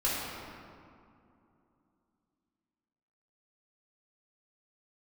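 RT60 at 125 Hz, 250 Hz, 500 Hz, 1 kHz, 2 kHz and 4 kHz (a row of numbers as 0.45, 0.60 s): 3.1, 3.5, 2.7, 2.6, 1.8, 1.3 s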